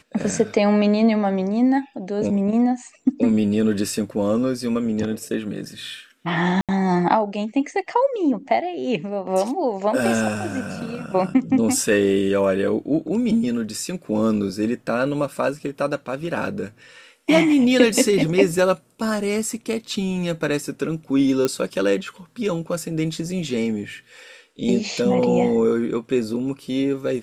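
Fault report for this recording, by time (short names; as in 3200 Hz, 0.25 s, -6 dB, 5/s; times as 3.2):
6.61–6.69 gap 77 ms
21.45 pop -7 dBFS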